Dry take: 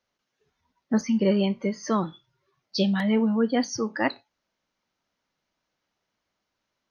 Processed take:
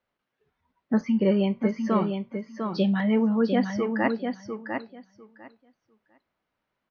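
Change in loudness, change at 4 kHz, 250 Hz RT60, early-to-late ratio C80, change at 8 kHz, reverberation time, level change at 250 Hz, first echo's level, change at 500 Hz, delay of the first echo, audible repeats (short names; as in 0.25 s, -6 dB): -0.5 dB, -6.0 dB, none, none, n/a, none, +1.0 dB, -6.0 dB, +1.0 dB, 0.7 s, 2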